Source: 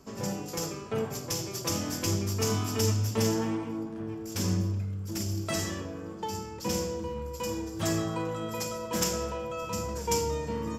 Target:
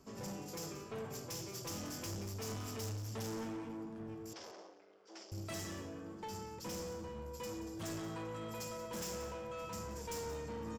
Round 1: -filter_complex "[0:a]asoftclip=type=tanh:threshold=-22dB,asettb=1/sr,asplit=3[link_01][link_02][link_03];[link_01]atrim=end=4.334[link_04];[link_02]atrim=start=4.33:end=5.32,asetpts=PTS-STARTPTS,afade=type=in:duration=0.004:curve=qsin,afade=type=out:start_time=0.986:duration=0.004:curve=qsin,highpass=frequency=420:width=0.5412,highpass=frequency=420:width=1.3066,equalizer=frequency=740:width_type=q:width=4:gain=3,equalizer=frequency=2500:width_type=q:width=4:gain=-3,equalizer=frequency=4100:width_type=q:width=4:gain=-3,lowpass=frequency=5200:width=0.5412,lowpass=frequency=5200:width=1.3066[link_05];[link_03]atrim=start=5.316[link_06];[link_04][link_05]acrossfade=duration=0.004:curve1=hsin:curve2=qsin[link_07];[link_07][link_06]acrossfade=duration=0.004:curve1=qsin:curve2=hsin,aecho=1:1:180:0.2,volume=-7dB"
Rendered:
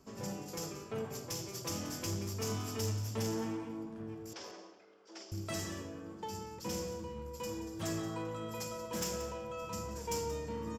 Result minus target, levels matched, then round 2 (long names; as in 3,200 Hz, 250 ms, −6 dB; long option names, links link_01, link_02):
soft clipping: distortion −10 dB
-filter_complex "[0:a]asoftclip=type=tanh:threshold=-32.5dB,asettb=1/sr,asplit=3[link_01][link_02][link_03];[link_01]atrim=end=4.334[link_04];[link_02]atrim=start=4.33:end=5.32,asetpts=PTS-STARTPTS,afade=type=in:duration=0.004:curve=qsin,afade=type=out:start_time=0.986:duration=0.004:curve=qsin,highpass=frequency=420:width=0.5412,highpass=frequency=420:width=1.3066,equalizer=frequency=740:width_type=q:width=4:gain=3,equalizer=frequency=2500:width_type=q:width=4:gain=-3,equalizer=frequency=4100:width_type=q:width=4:gain=-3,lowpass=frequency=5200:width=0.5412,lowpass=frequency=5200:width=1.3066[link_05];[link_03]atrim=start=5.316[link_06];[link_04][link_05]acrossfade=duration=0.004:curve1=hsin:curve2=qsin[link_07];[link_07][link_06]acrossfade=duration=0.004:curve1=qsin:curve2=hsin,aecho=1:1:180:0.2,volume=-7dB"